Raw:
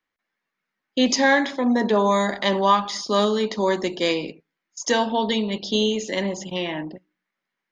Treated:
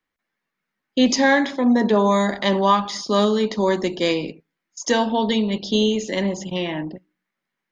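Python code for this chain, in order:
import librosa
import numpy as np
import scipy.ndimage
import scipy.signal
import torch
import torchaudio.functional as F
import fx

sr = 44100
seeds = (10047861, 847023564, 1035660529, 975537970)

y = fx.low_shelf(x, sr, hz=270.0, db=6.5)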